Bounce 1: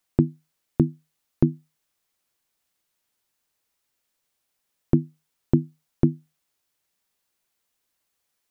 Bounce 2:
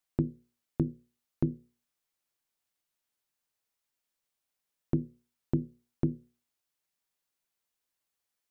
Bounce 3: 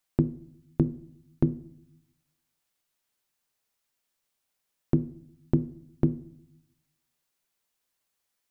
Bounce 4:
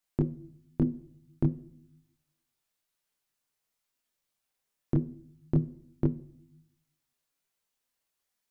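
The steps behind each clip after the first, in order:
hum notches 60/120/180/240/300/360/420/480/540 Hz; trim -8.5 dB
reverberation RT60 0.70 s, pre-delay 5 ms, DRR 15.5 dB; trim +5 dB
chorus voices 4, 0.28 Hz, delay 24 ms, depth 4.3 ms

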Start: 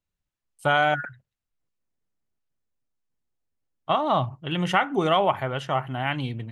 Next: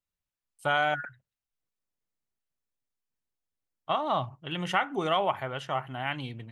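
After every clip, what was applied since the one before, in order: bass shelf 470 Hz -5 dB; trim -4 dB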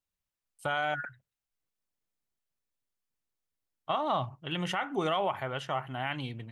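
peak limiter -20 dBFS, peak gain reduction 8.5 dB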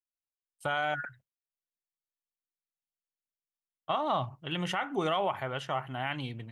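gate with hold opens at -47 dBFS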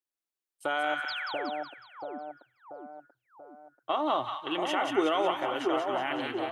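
resonant low shelf 230 Hz -10.5 dB, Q 3; painted sound fall, 1.08–1.50 s, 230–5500 Hz -38 dBFS; two-band feedback delay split 1 kHz, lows 685 ms, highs 184 ms, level -3.5 dB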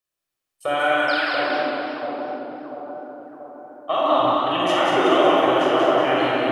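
simulated room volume 3800 m³, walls mixed, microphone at 6 m; modulated delay 230 ms, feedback 47%, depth 120 cents, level -9.5 dB; trim +2.5 dB

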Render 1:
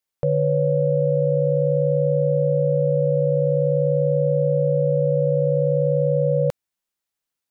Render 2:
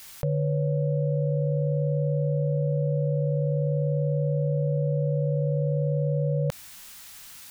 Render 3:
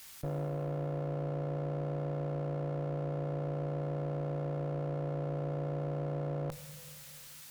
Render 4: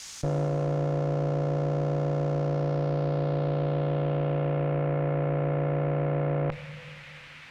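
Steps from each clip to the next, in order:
peaking EQ 440 Hz -11 dB 1.7 oct; level flattener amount 70%
Schroeder reverb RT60 2.5 s, combs from 26 ms, DRR 8.5 dB; one-sided clip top -37.5 dBFS, bottom -20.5 dBFS; trim -6 dB
low-pass sweep 6.4 kHz -> 2.3 kHz, 2.29–4.89 s; trim +8.5 dB

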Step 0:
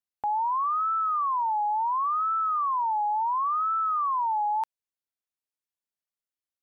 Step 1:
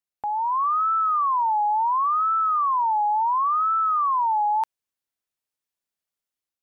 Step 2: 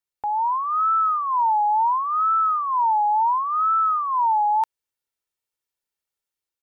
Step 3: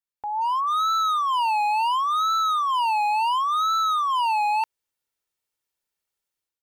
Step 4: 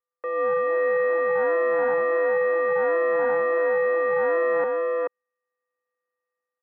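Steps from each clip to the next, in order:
level rider gain up to 4.5 dB
comb 2.2 ms, depth 38%
level rider gain up to 8.5 dB; overload inside the chain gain 15 dB; trim -6 dB
sorted samples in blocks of 64 samples; delay 432 ms -3.5 dB; mistuned SSB -190 Hz 590–2100 Hz; trim +2.5 dB

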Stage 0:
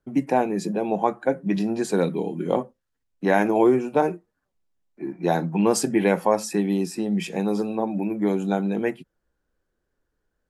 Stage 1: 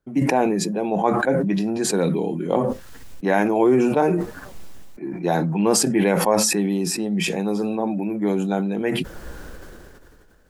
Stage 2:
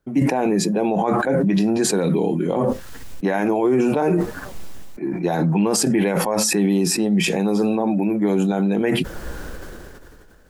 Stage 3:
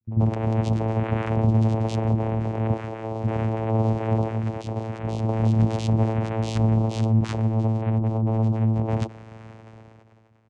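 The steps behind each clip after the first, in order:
decay stretcher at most 23 dB/s
peak limiter -15.5 dBFS, peak gain reduction 10 dB; trim +5 dB
ever faster or slower copies 263 ms, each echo +5 st, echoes 3, each echo -6 dB; vocoder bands 4, saw 111 Hz; bands offset in time lows, highs 40 ms, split 300 Hz; trim -2.5 dB

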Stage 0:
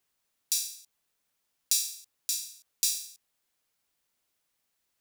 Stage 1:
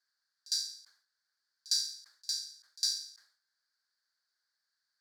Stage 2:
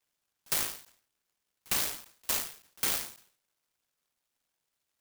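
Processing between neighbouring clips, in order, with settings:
two resonant band-passes 2.7 kHz, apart 1.5 oct; pre-echo 56 ms -23 dB; decay stretcher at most 110 dB/s; trim +7 dB
level-controlled noise filter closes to 2.5 kHz, open at -29 dBFS; peak limiter -25 dBFS, peak gain reduction 8 dB; delay time shaken by noise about 4.6 kHz, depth 0.21 ms; trim +7 dB

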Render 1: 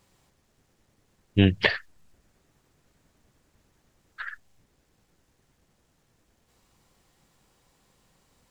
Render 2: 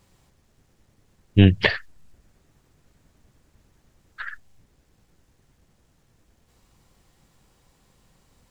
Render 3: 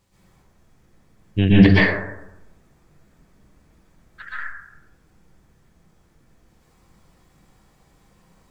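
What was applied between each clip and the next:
bass shelf 160 Hz +7 dB; trim +2 dB
plate-style reverb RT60 0.91 s, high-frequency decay 0.3×, pre-delay 110 ms, DRR -9.5 dB; trim -5.5 dB

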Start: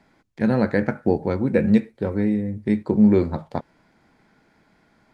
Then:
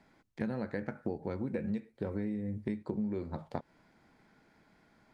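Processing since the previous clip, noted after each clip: compression 12:1, threshold -26 dBFS, peak gain reduction 16 dB; trim -5.5 dB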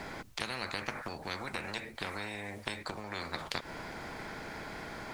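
spectrum-flattening compressor 10:1; trim +3 dB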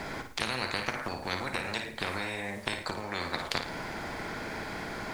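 flutter echo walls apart 9.4 m, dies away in 0.43 s; trim +4.5 dB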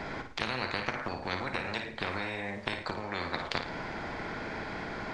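Gaussian low-pass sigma 1.5 samples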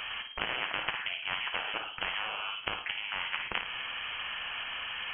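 frequency inversion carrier 3.2 kHz

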